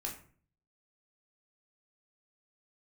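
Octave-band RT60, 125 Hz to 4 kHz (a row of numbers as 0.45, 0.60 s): 0.75, 0.60, 0.50, 0.45, 0.40, 0.30 s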